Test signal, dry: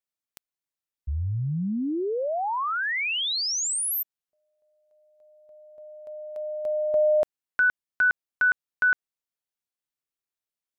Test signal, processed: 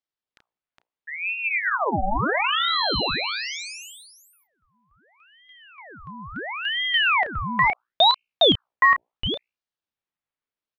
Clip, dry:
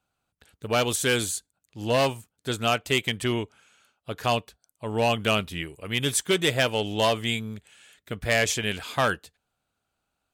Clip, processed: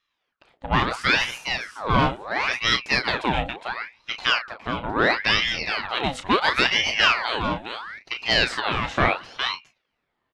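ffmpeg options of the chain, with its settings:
-filter_complex "[0:a]acontrast=59,highpass=110,lowpass=2600,bandreject=f=60:t=h:w=6,bandreject=f=120:t=h:w=6,bandreject=f=180:t=h:w=6,bandreject=f=240:t=h:w=6,bandreject=f=300:t=h:w=6,bandreject=f=360:t=h:w=6,bandreject=f=420:t=h:w=6,asplit=2[s0][s1];[s1]adelay=32,volume=0.376[s2];[s0][s2]amix=inputs=2:normalize=0,asplit=2[s3][s4];[s4]aecho=0:1:412:0.473[s5];[s3][s5]amix=inputs=2:normalize=0,aeval=exprs='val(0)*sin(2*PI*1500*n/s+1500*0.75/0.73*sin(2*PI*0.73*n/s))':c=same"

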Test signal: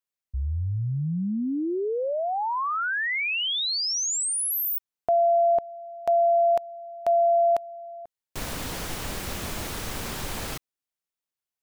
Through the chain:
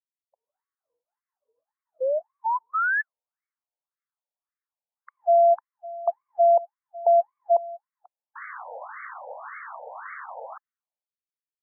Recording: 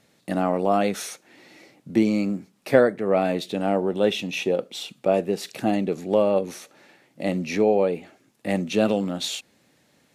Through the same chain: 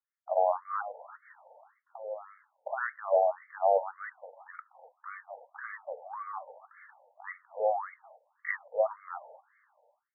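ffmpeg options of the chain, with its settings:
-filter_complex "[0:a]agate=range=0.0224:threshold=0.00708:ratio=3:release=487:detection=rms,acrossover=split=150|3100[s0][s1][s2];[s1]alimiter=limit=0.168:level=0:latency=1:release=351[s3];[s0][s3][s2]amix=inputs=3:normalize=0,afftfilt=real='re*between(b*sr/1024,650*pow(1600/650,0.5+0.5*sin(2*PI*1.8*pts/sr))/1.41,650*pow(1600/650,0.5+0.5*sin(2*PI*1.8*pts/sr))*1.41)':imag='im*between(b*sr/1024,650*pow(1600/650,0.5+0.5*sin(2*PI*1.8*pts/sr))/1.41,650*pow(1600/650,0.5+0.5*sin(2*PI*1.8*pts/sr))*1.41)':win_size=1024:overlap=0.75,volume=1.58"

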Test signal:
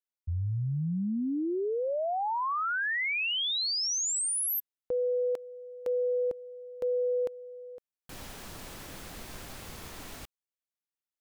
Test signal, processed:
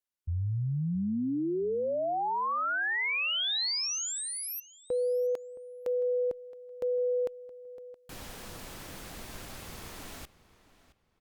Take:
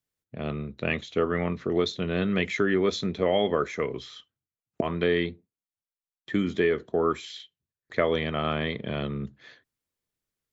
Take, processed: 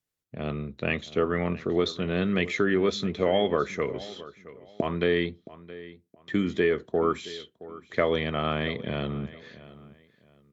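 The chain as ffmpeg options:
-filter_complex "[0:a]acrossover=split=5100[s0][s1];[s1]acompressor=threshold=0.0141:ratio=4:attack=1:release=60[s2];[s0][s2]amix=inputs=2:normalize=0,asplit=2[s3][s4];[s4]adelay=670,lowpass=f=4700:p=1,volume=0.133,asplit=2[s5][s6];[s6]adelay=670,lowpass=f=4700:p=1,volume=0.27[s7];[s3][s5][s7]amix=inputs=3:normalize=0" -ar 48000 -c:a libopus -b:a 128k

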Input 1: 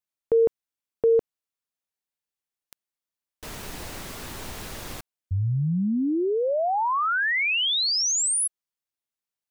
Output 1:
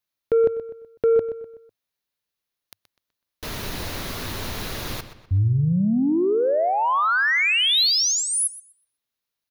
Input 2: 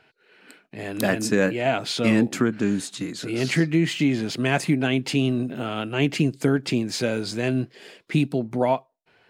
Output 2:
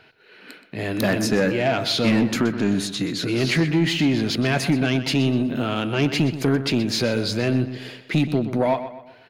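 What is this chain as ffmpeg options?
-filter_complex "[0:a]equalizer=f=100:t=o:w=0.33:g=4,equalizer=f=800:t=o:w=0.33:g=-3,equalizer=f=4000:t=o:w=0.33:g=4,equalizer=f=8000:t=o:w=0.33:g=-10,asplit=2[s0][s1];[s1]acompressor=threshold=0.0398:ratio=6:attack=2:release=49,volume=0.75[s2];[s0][s2]amix=inputs=2:normalize=0,asoftclip=type=tanh:threshold=0.211,asplit=2[s3][s4];[s4]adelay=125,lowpass=f=5000:p=1,volume=0.266,asplit=2[s5][s6];[s6]adelay=125,lowpass=f=5000:p=1,volume=0.42,asplit=2[s7][s8];[s8]adelay=125,lowpass=f=5000:p=1,volume=0.42,asplit=2[s9][s10];[s10]adelay=125,lowpass=f=5000:p=1,volume=0.42[s11];[s3][s5][s7][s9][s11]amix=inputs=5:normalize=0,volume=1.19"

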